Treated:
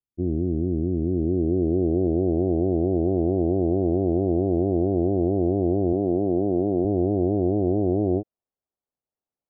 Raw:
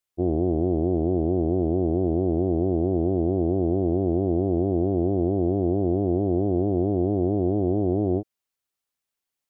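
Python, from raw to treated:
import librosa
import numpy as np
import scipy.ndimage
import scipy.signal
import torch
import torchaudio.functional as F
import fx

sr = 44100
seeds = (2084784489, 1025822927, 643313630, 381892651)

y = fx.highpass(x, sr, hz=120.0, slope=12, at=(5.93, 6.85))
y = fx.filter_sweep_lowpass(y, sr, from_hz=260.0, to_hz=700.0, start_s=0.98, end_s=2.45, q=1.1)
y = fx.lowpass(y, sr, hz=1000.0, slope=12, at=(2.07, 3.08))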